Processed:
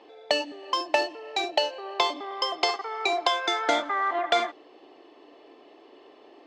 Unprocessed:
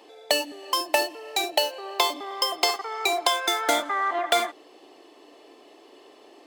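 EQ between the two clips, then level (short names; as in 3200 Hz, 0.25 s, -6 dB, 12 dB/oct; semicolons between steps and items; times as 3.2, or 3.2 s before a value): dynamic EQ 6700 Hz, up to +6 dB, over -41 dBFS, Q 0.92; air absorption 190 m; 0.0 dB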